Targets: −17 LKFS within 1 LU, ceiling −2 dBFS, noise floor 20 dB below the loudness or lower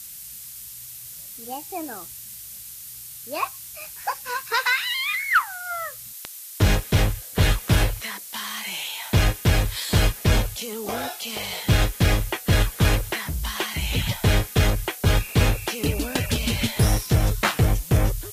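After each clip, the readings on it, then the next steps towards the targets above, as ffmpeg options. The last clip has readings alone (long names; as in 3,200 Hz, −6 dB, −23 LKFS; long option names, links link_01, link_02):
background noise floor −39 dBFS; target noise floor −44 dBFS; integrated loudness −23.5 LKFS; sample peak −8.5 dBFS; target loudness −17.0 LKFS
→ -af "afftdn=noise_reduction=6:noise_floor=-39"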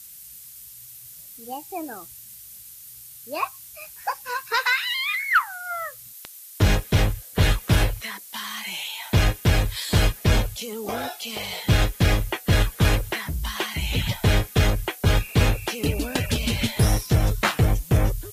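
background noise floor −44 dBFS; integrated loudness −23.5 LKFS; sample peak −9.0 dBFS; target loudness −17.0 LKFS
→ -af "volume=6.5dB"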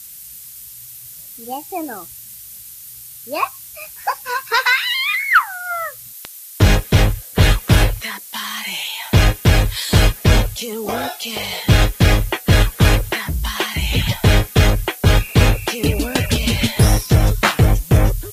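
integrated loudness −17.0 LKFS; sample peak −2.5 dBFS; background noise floor −37 dBFS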